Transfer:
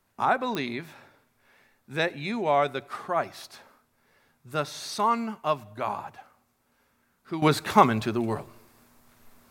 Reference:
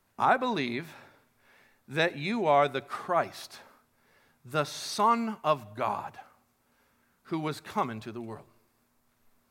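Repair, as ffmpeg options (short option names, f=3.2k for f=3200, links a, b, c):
-af "adeclick=t=4,asetnsamples=n=441:p=0,asendcmd='7.42 volume volume -12dB',volume=0dB"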